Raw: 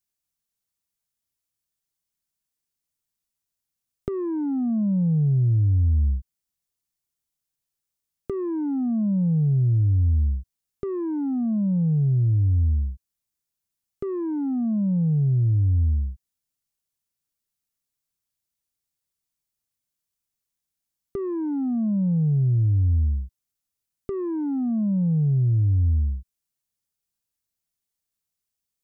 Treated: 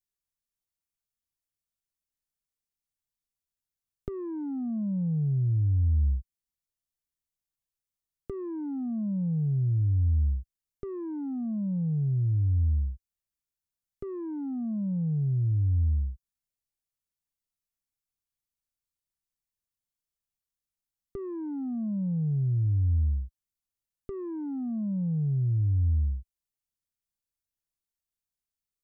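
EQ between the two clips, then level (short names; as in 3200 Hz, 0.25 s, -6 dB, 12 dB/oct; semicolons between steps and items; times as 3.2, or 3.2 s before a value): low shelf 66 Hz +11 dB; -8.5 dB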